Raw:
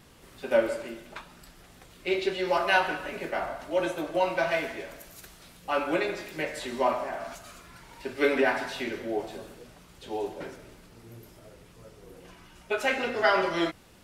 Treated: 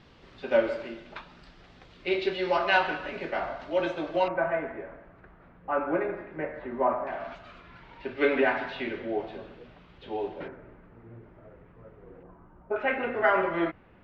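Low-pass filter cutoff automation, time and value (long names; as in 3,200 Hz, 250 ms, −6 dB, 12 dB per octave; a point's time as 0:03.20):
low-pass filter 24 dB per octave
4,600 Hz
from 0:04.28 1,700 Hz
from 0:07.07 3,400 Hz
from 0:10.48 1,900 Hz
from 0:12.23 1,200 Hz
from 0:12.76 2,300 Hz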